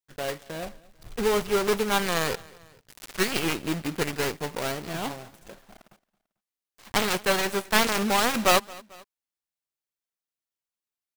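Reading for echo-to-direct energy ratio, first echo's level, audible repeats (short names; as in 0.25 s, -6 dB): -22.0 dB, -23.0 dB, 2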